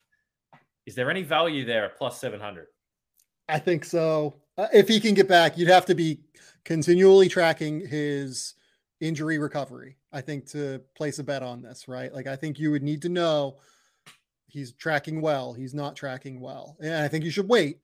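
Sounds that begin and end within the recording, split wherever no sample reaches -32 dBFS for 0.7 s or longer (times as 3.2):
0.88–2.59
3.49–13.5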